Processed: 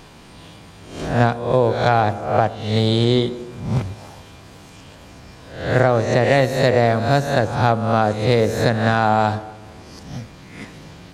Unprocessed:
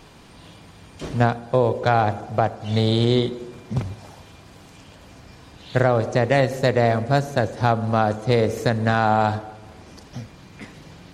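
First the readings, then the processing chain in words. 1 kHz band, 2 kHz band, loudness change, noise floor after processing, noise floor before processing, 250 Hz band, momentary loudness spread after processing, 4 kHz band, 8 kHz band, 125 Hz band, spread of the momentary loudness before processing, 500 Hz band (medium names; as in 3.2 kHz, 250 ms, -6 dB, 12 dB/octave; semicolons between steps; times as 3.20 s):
+2.5 dB, +3.5 dB, +3.0 dB, -43 dBFS, -47 dBFS, +2.5 dB, 19 LU, +4.0 dB, +4.5 dB, +2.5 dB, 16 LU, +3.0 dB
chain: reverse spectral sustain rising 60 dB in 0.62 s; trim +1.5 dB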